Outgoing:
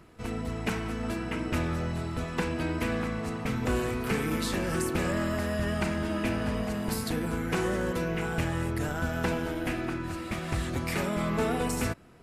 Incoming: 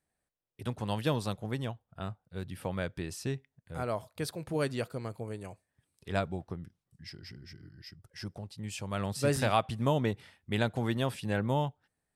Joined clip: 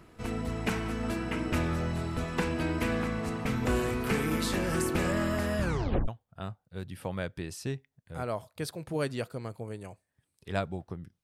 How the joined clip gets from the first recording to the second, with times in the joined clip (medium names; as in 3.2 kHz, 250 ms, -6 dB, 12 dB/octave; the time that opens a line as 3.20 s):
outgoing
5.60 s: tape stop 0.48 s
6.08 s: go over to incoming from 1.68 s